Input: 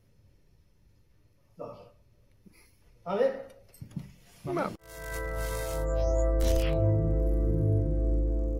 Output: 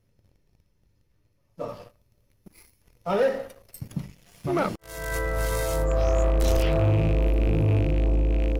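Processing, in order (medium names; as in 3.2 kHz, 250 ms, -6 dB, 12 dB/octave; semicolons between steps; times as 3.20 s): rattle on loud lows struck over -26 dBFS, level -33 dBFS; 1.68–3.98 s: treble shelf 7.6 kHz +8.5 dB; waveshaping leveller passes 2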